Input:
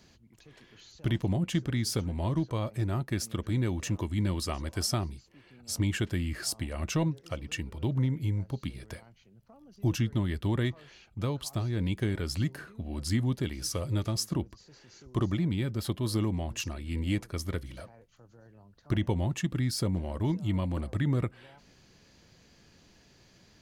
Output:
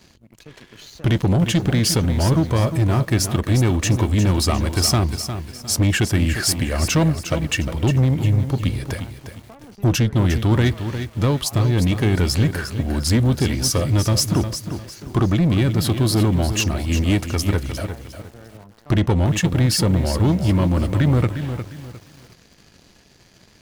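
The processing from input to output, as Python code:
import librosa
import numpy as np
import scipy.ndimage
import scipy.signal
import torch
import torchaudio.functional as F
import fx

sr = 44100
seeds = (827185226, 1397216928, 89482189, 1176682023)

y = fx.leveller(x, sr, passes=2)
y = fx.echo_crushed(y, sr, ms=355, feedback_pct=35, bits=8, wet_db=-9)
y = y * librosa.db_to_amplitude(7.0)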